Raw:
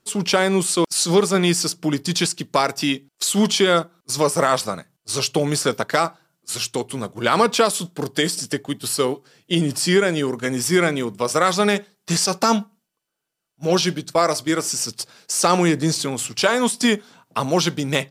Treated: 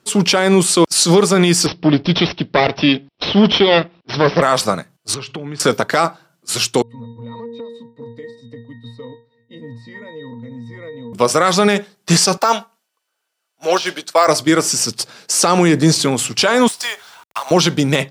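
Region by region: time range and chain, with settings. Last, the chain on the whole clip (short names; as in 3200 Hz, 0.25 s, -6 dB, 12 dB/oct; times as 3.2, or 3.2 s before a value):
1.66–4.42 minimum comb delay 0.32 ms + steep low-pass 5300 Hz 96 dB/oct
5.14–5.6 LPF 2600 Hz + bell 600 Hz -9 dB 0.67 oct + compressor 8:1, threshold -33 dBFS
6.82–11.13 bell 3600 Hz +4 dB 1 oct + octave resonator A#, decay 0.33 s + compressor, threshold -37 dBFS
12.37–14.28 HPF 620 Hz + de-esser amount 60%
16.68–17.51 HPF 710 Hz 24 dB/oct + compressor 2.5:1, threshold -31 dBFS + companded quantiser 4-bit
whole clip: HPF 83 Hz; high shelf 7500 Hz -6 dB; maximiser +10 dB; gain -1 dB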